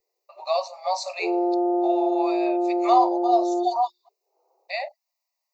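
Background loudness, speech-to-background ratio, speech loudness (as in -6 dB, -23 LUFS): -24.0 LUFS, -2.5 dB, -26.5 LUFS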